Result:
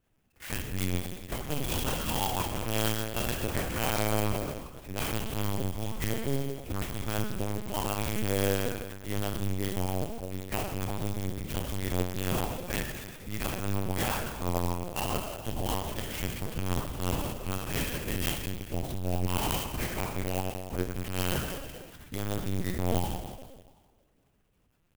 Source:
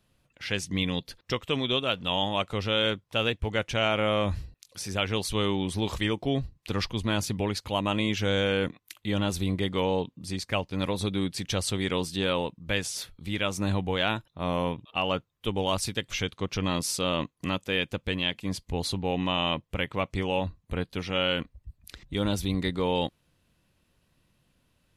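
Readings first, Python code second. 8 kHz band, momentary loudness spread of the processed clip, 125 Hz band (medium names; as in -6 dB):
+0.5 dB, 7 LU, -0.5 dB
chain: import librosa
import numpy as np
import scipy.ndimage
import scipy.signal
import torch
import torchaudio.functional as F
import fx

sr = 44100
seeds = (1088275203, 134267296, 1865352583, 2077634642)

y = fx.rev_plate(x, sr, seeds[0], rt60_s=1.5, hf_ratio=0.95, predelay_ms=0, drr_db=-1.5)
y = fx.lpc_vocoder(y, sr, seeds[1], excitation='pitch_kept', order=8)
y = fx.clock_jitter(y, sr, seeds[2], jitter_ms=0.06)
y = y * 10.0 ** (-6.0 / 20.0)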